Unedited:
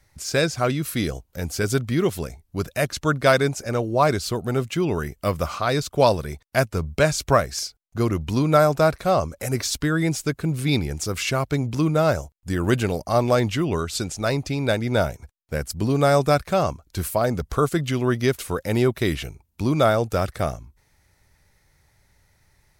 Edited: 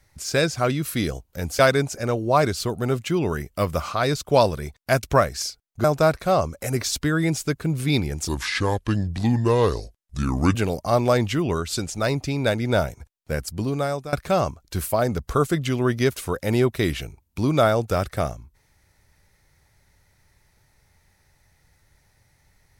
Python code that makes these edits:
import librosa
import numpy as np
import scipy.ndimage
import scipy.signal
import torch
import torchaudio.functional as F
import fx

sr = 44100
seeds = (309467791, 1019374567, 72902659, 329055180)

y = fx.edit(x, sr, fx.cut(start_s=1.59, length_s=1.66),
    fx.cut(start_s=6.69, length_s=0.51),
    fx.cut(start_s=8.01, length_s=0.62),
    fx.speed_span(start_s=11.07, length_s=1.7, speed=0.75),
    fx.fade_out_to(start_s=15.6, length_s=0.75, floor_db=-18.5), tone=tone)